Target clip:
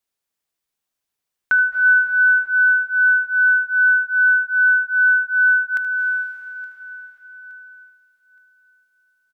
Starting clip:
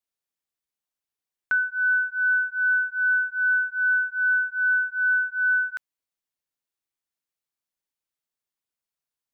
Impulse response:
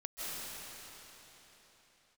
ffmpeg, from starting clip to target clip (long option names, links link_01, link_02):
-filter_complex "[0:a]aecho=1:1:869|1738|2607:0.106|0.036|0.0122,asplit=2[link_01][link_02];[1:a]atrim=start_sample=2205,adelay=76[link_03];[link_02][link_03]afir=irnorm=-1:irlink=0,volume=-7.5dB[link_04];[link_01][link_04]amix=inputs=2:normalize=0,volume=6.5dB"